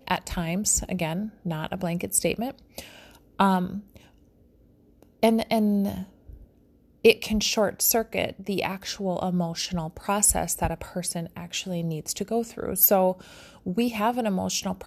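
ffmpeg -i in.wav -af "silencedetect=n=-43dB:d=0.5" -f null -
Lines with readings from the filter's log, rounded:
silence_start: 4.01
silence_end: 5.03 | silence_duration: 1.02
silence_start: 6.44
silence_end: 7.05 | silence_duration: 0.61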